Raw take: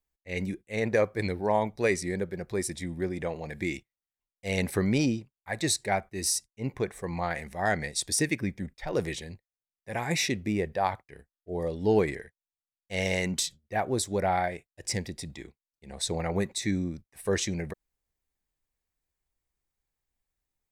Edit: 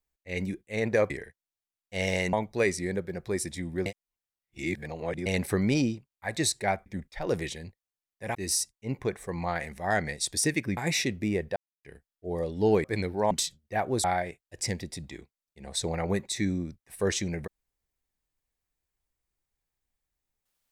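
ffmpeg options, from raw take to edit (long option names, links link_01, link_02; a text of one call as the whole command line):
ffmpeg -i in.wav -filter_complex "[0:a]asplit=13[link_01][link_02][link_03][link_04][link_05][link_06][link_07][link_08][link_09][link_10][link_11][link_12][link_13];[link_01]atrim=end=1.102[link_14];[link_02]atrim=start=12.078:end=13.312[link_15];[link_03]atrim=start=1.568:end=3.102[link_16];[link_04]atrim=start=3.098:end=4.502,asetpts=PTS-STARTPTS,areverse[link_17];[link_05]atrim=start=4.498:end=6.102[link_18];[link_06]atrim=start=8.518:end=10.012[link_19];[link_07]atrim=start=6.098:end=8.522[link_20];[link_08]atrim=start=10.008:end=10.8,asetpts=PTS-STARTPTS,afade=type=out:start_time=0.788:duration=0.004:curve=hsin[link_21];[link_09]atrim=start=10.8:end=11.07,asetpts=PTS-STARTPTS,volume=0[link_22];[link_10]atrim=start=11.07:end=12.082,asetpts=PTS-STARTPTS,afade=type=in:duration=0.004:curve=hsin[link_23];[link_11]atrim=start=1.098:end=1.572[link_24];[link_12]atrim=start=13.308:end=14.042[link_25];[link_13]atrim=start=14.298[link_26];[link_14][link_15]acrossfade=duration=0.004:curve1=hsin:curve2=hsin[link_27];[link_27][link_16]acrossfade=duration=0.004:curve1=hsin:curve2=hsin[link_28];[link_28][link_17]acrossfade=duration=0.004:curve1=hsin:curve2=hsin[link_29];[link_29][link_18]acrossfade=duration=0.004:curve1=hsin:curve2=hsin[link_30];[link_30][link_19]acrossfade=duration=0.004:curve1=hsin:curve2=hsin[link_31];[link_31][link_20]acrossfade=duration=0.004:curve1=hsin:curve2=hsin[link_32];[link_21][link_22][link_23]concat=n=3:v=0:a=1[link_33];[link_32][link_33]acrossfade=duration=0.004:curve1=hsin:curve2=hsin[link_34];[link_34][link_24]acrossfade=duration=0.004:curve1=hsin:curve2=hsin[link_35];[link_35][link_25]acrossfade=duration=0.004:curve1=hsin:curve2=hsin[link_36];[link_36][link_26]acrossfade=duration=0.004:curve1=hsin:curve2=hsin" out.wav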